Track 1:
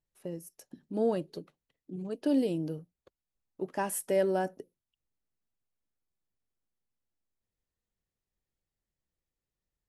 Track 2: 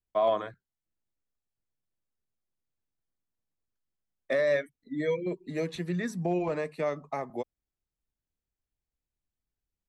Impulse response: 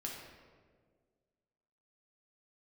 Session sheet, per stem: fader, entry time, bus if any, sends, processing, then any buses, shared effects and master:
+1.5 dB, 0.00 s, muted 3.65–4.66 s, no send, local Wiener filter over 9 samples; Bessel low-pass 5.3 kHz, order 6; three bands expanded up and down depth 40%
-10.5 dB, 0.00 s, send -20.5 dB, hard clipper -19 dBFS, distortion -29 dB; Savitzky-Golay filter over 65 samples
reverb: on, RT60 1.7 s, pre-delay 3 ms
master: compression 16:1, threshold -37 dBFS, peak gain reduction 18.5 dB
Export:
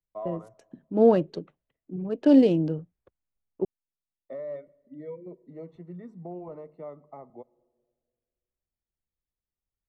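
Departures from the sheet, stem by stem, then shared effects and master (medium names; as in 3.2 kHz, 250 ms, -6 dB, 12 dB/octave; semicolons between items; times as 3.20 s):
stem 1 +1.5 dB -> +8.5 dB; master: missing compression 16:1, threshold -37 dBFS, peak gain reduction 18.5 dB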